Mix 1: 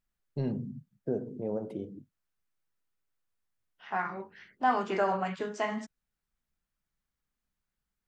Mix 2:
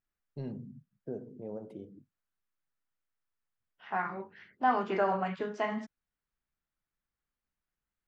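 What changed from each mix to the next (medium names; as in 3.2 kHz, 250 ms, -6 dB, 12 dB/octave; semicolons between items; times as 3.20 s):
first voice -7.5 dB; second voice: add distance through air 150 m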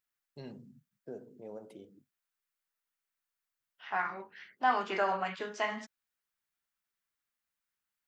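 master: add tilt EQ +3.5 dB/octave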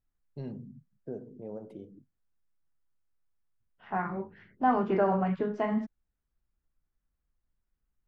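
second voice: add tilt EQ -3.5 dB/octave; master: add tilt EQ -3.5 dB/octave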